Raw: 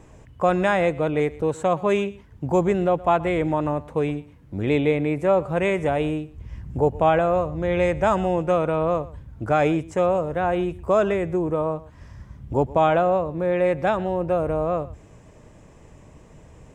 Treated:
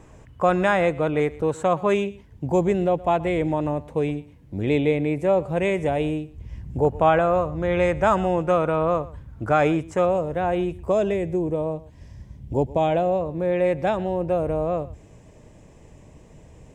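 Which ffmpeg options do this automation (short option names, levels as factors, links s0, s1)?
-af "asetnsamples=n=441:p=0,asendcmd='1.94 equalizer g -7.5;6.85 equalizer g 3;10.05 equalizer g -5;10.92 equalizer g -15;13.21 equalizer g -6.5',equalizer=f=1300:t=o:w=0.76:g=2"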